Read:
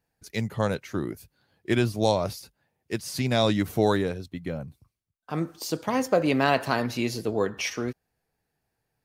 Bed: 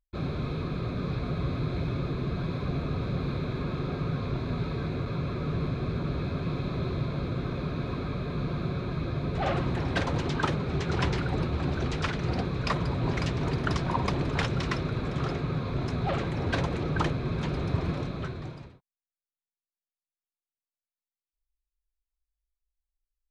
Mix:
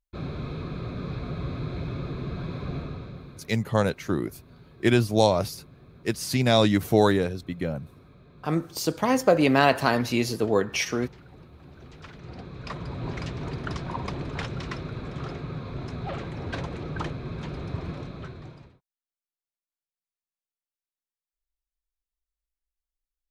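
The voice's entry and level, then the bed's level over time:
3.15 s, +3.0 dB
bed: 2.78 s -2 dB
3.58 s -20.5 dB
11.6 s -20.5 dB
13.01 s -4.5 dB

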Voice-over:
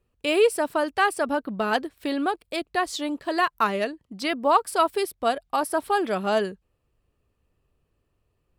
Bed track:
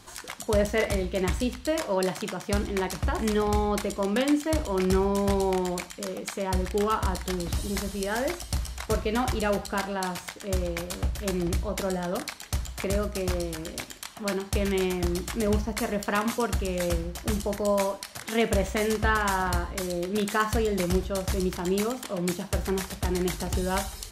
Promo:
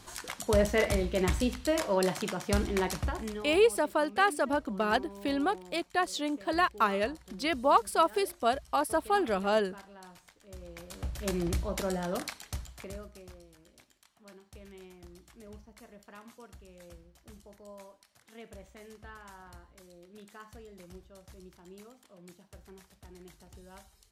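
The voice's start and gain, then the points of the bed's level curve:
3.20 s, -4.0 dB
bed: 2.94 s -1.5 dB
3.61 s -21 dB
10.5 s -21 dB
11.27 s -3.5 dB
12.28 s -3.5 dB
13.41 s -24.5 dB

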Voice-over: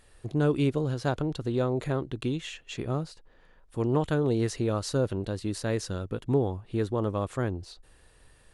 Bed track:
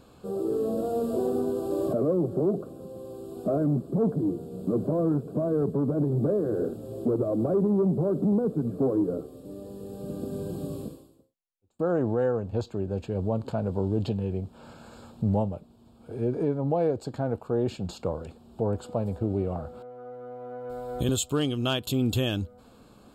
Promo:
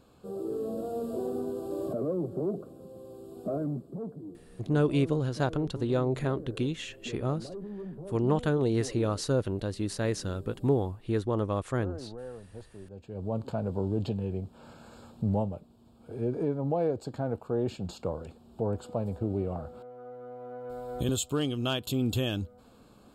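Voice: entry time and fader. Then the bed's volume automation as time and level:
4.35 s, -0.5 dB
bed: 3.58 s -6 dB
4.22 s -16.5 dB
12.91 s -16.5 dB
13.37 s -3 dB

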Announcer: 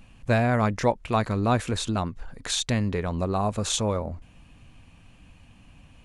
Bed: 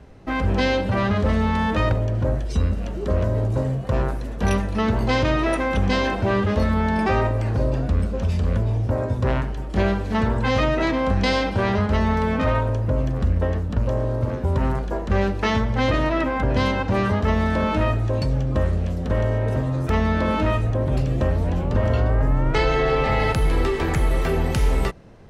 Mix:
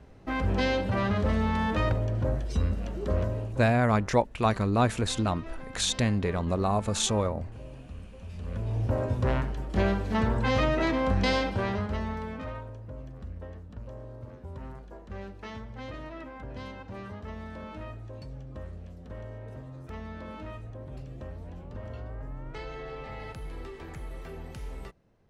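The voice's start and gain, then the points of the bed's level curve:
3.30 s, -1.0 dB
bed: 3.2 s -6 dB
3.87 s -22.5 dB
8.2 s -22.5 dB
8.83 s -5 dB
11.35 s -5 dB
12.75 s -20 dB

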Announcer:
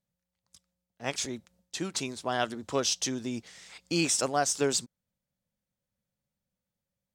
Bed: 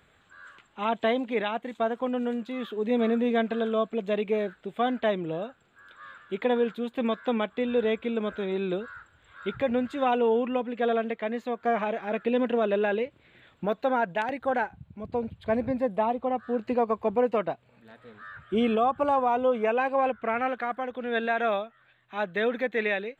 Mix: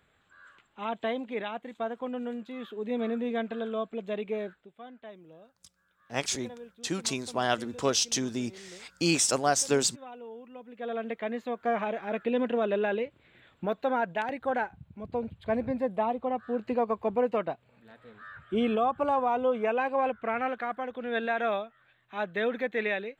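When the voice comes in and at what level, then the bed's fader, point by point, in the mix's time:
5.10 s, +2.0 dB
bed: 4.51 s -6 dB
4.74 s -20.5 dB
10.48 s -20.5 dB
11.14 s -2.5 dB

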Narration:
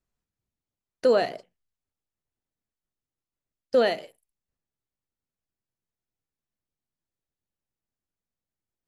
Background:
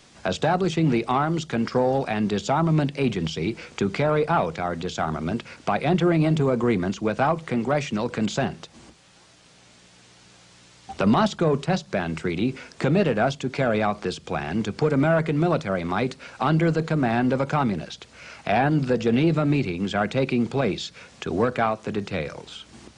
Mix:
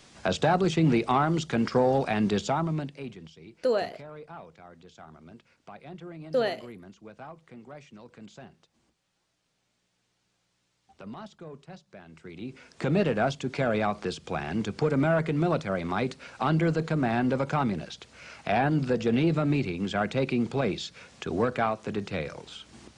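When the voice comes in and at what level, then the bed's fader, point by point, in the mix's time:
2.60 s, -5.0 dB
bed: 2.38 s -1.5 dB
3.36 s -22.5 dB
12.06 s -22.5 dB
12.95 s -4 dB

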